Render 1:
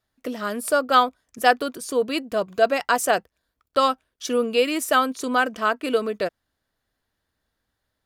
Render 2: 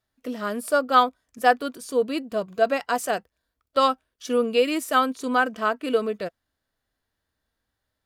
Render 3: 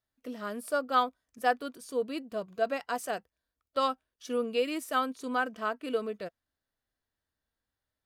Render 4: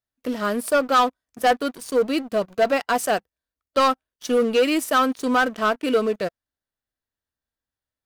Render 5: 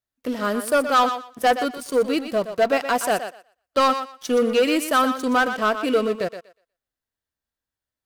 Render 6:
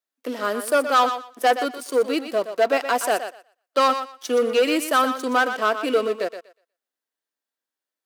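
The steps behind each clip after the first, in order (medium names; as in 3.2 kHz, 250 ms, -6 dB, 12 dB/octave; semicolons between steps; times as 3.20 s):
harmonic-percussive split percussive -7 dB
band-stop 7.2 kHz, Q 24; trim -8.5 dB
waveshaping leveller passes 3; trim +2 dB
thinning echo 121 ms, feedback 19%, high-pass 370 Hz, level -9 dB
high-pass 270 Hz 24 dB/octave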